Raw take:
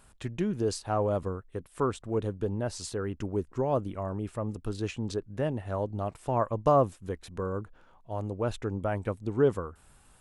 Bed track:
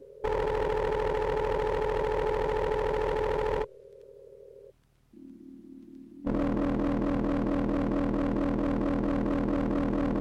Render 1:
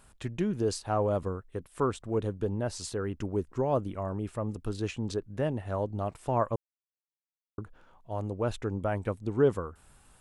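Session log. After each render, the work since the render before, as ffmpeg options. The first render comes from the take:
ffmpeg -i in.wav -filter_complex "[0:a]asplit=3[link_01][link_02][link_03];[link_01]atrim=end=6.56,asetpts=PTS-STARTPTS,afade=type=out:start_time=6.556:duration=0.004:curve=hsin[link_04];[link_02]atrim=start=6.56:end=7.58,asetpts=PTS-STARTPTS,volume=0[link_05];[link_03]atrim=start=7.58,asetpts=PTS-STARTPTS,afade=type=in:duration=0.004:curve=hsin[link_06];[link_04][link_05][link_06]concat=n=3:v=0:a=1" out.wav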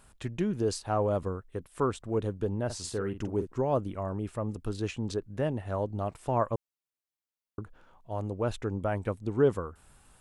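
ffmpeg -i in.wav -filter_complex "[0:a]asettb=1/sr,asplit=3[link_01][link_02][link_03];[link_01]atrim=end=2.654[link_04];[link_02]atrim=start=2.65:end=3.47,asetpts=PTS-STARTPTS,afade=type=in:duration=0.004:curve=qsin,afade=type=out:start_time=0.816:duration=0.004:curve=qsin,asplit=2[link_05][link_06];[link_06]adelay=46,volume=-9dB[link_07];[link_05][link_07]amix=inputs=2:normalize=0,atrim=end_sample=36162[link_08];[link_03]atrim=start=3.466[link_09];[link_04][link_08]acrossfade=duration=0.004:curve1=hsin:curve2=qsin[link_10];[link_10][link_09]acrossfade=duration=0.004:curve1=qsin:curve2=hsin" out.wav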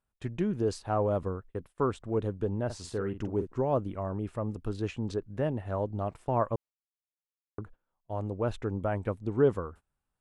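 ffmpeg -i in.wav -af "agate=range=-25dB:threshold=-47dB:ratio=16:detection=peak,highshelf=frequency=4000:gain=-9.5" out.wav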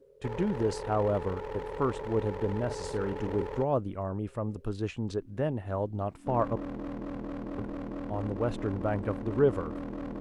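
ffmpeg -i in.wav -i bed.wav -filter_complex "[1:a]volume=-9.5dB[link_01];[0:a][link_01]amix=inputs=2:normalize=0" out.wav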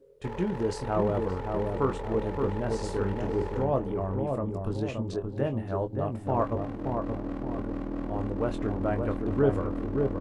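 ffmpeg -i in.wav -filter_complex "[0:a]asplit=2[link_01][link_02];[link_02]adelay=22,volume=-8dB[link_03];[link_01][link_03]amix=inputs=2:normalize=0,asplit=2[link_04][link_05];[link_05]adelay=573,lowpass=frequency=870:poles=1,volume=-3dB,asplit=2[link_06][link_07];[link_07]adelay=573,lowpass=frequency=870:poles=1,volume=0.48,asplit=2[link_08][link_09];[link_09]adelay=573,lowpass=frequency=870:poles=1,volume=0.48,asplit=2[link_10][link_11];[link_11]adelay=573,lowpass=frequency=870:poles=1,volume=0.48,asplit=2[link_12][link_13];[link_13]adelay=573,lowpass=frequency=870:poles=1,volume=0.48,asplit=2[link_14][link_15];[link_15]adelay=573,lowpass=frequency=870:poles=1,volume=0.48[link_16];[link_06][link_08][link_10][link_12][link_14][link_16]amix=inputs=6:normalize=0[link_17];[link_04][link_17]amix=inputs=2:normalize=0" out.wav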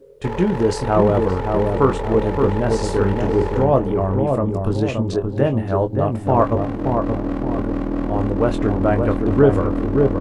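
ffmpeg -i in.wav -af "volume=11dB,alimiter=limit=-2dB:level=0:latency=1" out.wav

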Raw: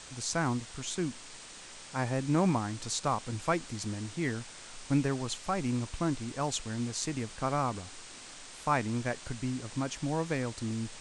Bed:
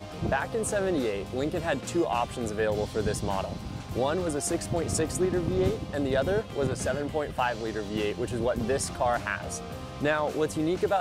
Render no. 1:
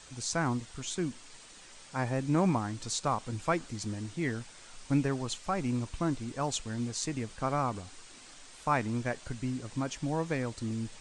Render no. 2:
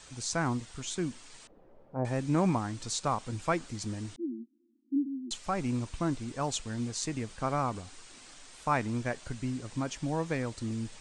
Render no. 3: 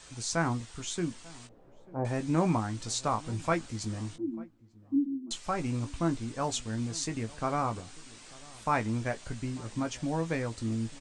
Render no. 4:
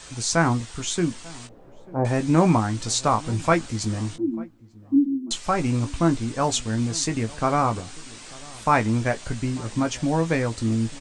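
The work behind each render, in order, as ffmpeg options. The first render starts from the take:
ffmpeg -i in.wav -af "afftdn=noise_reduction=6:noise_floor=-48" out.wav
ffmpeg -i in.wav -filter_complex "[0:a]asettb=1/sr,asplit=3[link_01][link_02][link_03];[link_01]atrim=end=1.474[link_04];[link_02]atrim=start=1.47:end=2.05,asetpts=PTS-STARTPTS,afade=type=in:duration=0.004:curve=qsin,afade=type=out:start_time=0.576:duration=0.004:curve=qsin,lowpass=frequency=550:width_type=q:width=1.8[link_05];[link_03]atrim=start=2.046[link_06];[link_04][link_05]acrossfade=duration=0.004:curve1=hsin:curve2=qsin[link_07];[link_07][link_06]acrossfade=duration=0.004:curve1=qsin:curve2=hsin,asettb=1/sr,asplit=3[link_08][link_09][link_10];[link_08]atrim=end=4.164[link_11];[link_09]atrim=start=4.16:end=5.31,asetpts=PTS-STARTPTS,afade=type=in:duration=0.004:curve=qsin,afade=type=out:start_time=1.146:duration=0.004:curve=qsin,asuperpass=centerf=280:order=20:qfactor=2.1[link_12];[link_10]atrim=start=5.306[link_13];[link_11][link_12]acrossfade=duration=0.004:curve1=hsin:curve2=qsin[link_14];[link_14][link_13]acrossfade=duration=0.004:curve1=qsin:curve2=hsin" out.wav
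ffmpeg -i in.wav -filter_complex "[0:a]asplit=2[link_01][link_02];[link_02]adelay=18,volume=-8dB[link_03];[link_01][link_03]amix=inputs=2:normalize=0,asplit=2[link_04][link_05];[link_05]adelay=893,lowpass=frequency=850:poles=1,volume=-21dB,asplit=2[link_06][link_07];[link_07]adelay=893,lowpass=frequency=850:poles=1,volume=0.22[link_08];[link_04][link_06][link_08]amix=inputs=3:normalize=0" out.wav
ffmpeg -i in.wav -af "volume=9dB" out.wav

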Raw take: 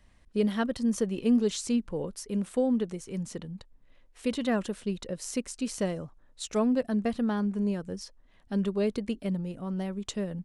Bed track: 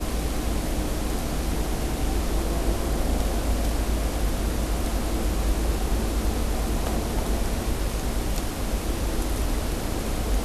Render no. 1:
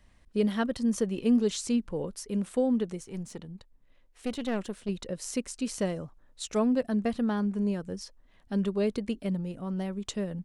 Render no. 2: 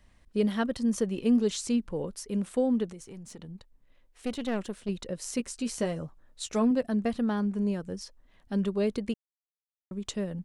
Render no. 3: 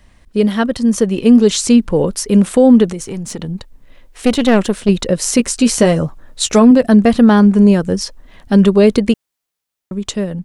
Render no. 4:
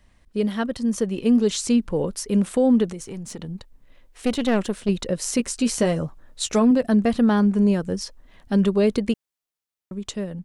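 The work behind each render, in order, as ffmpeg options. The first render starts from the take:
ffmpeg -i in.wav -filter_complex "[0:a]asettb=1/sr,asplit=3[link_01][link_02][link_03];[link_01]atrim=end=3.034[link_04];[link_02]atrim=start=3.03:end=4.89,asetpts=PTS-STARTPTS,afade=type=in:duration=0.004:curve=qsin,afade=type=out:start_time=1.856:duration=0.004:curve=qsin,aeval=exprs='(tanh(15.8*val(0)+0.65)-tanh(0.65))/15.8':channel_layout=same[link_05];[link_03]atrim=start=4.886[link_06];[link_04][link_05]acrossfade=duration=0.004:curve1=hsin:curve2=qsin[link_07];[link_07][link_06]acrossfade=duration=0.004:curve1=qsin:curve2=hsin" out.wav
ffmpeg -i in.wav -filter_complex "[0:a]asettb=1/sr,asplit=3[link_01][link_02][link_03];[link_01]atrim=end=2.914[link_04];[link_02]atrim=start=2.91:end=3.4,asetpts=PTS-STARTPTS,afade=type=in:duration=0.004:curve=qsin,afade=type=out:start_time=0.486:duration=0.004:curve=qsin,acompressor=threshold=-40dB:ratio=6:attack=3.2:release=140:knee=1:detection=peak[link_05];[link_03]atrim=start=3.396[link_06];[link_04][link_05]acrossfade=duration=0.004:curve1=hsin:curve2=qsin[link_07];[link_07][link_06]acrossfade=duration=0.004:curve1=qsin:curve2=hsin,asettb=1/sr,asplit=3[link_08][link_09][link_10];[link_08]atrim=end=5.374[link_11];[link_09]atrim=start=5.37:end=6.71,asetpts=PTS-STARTPTS,afade=type=in:duration=0.004:curve=qsin,afade=type=out:start_time=1.336:duration=0.004:curve=qsin,asplit=2[link_12][link_13];[link_13]adelay=13,volume=-8dB[link_14];[link_12][link_14]amix=inputs=2:normalize=0,atrim=end_sample=59094[link_15];[link_10]atrim=start=6.706[link_16];[link_11][link_15]acrossfade=duration=0.004:curve1=hsin:curve2=qsin[link_17];[link_17][link_16]acrossfade=duration=0.004:curve1=qsin:curve2=hsin,asplit=3[link_18][link_19][link_20];[link_18]atrim=end=9.14,asetpts=PTS-STARTPTS,afade=type=out:start_time=9.136:duration=0.004:curve=hsin[link_21];[link_19]atrim=start=9.14:end=9.91,asetpts=PTS-STARTPTS,volume=0[link_22];[link_20]atrim=start=9.91,asetpts=PTS-STARTPTS,afade=type=in:duration=0.004:curve=hsin[link_23];[link_21][link_22][link_23]concat=n=3:v=0:a=1" out.wav
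ffmpeg -i in.wav -af "dynaudnorm=framelen=440:gausssize=7:maxgain=7.5dB,alimiter=level_in=12.5dB:limit=-1dB:release=50:level=0:latency=1" out.wav
ffmpeg -i in.wav -af "volume=-9.5dB" out.wav

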